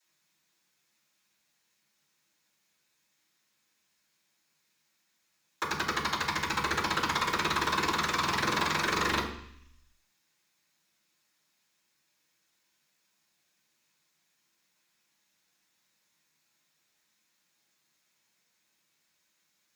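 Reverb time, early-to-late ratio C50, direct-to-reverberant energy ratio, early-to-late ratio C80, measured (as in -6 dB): 0.65 s, 7.0 dB, -14.0 dB, 10.0 dB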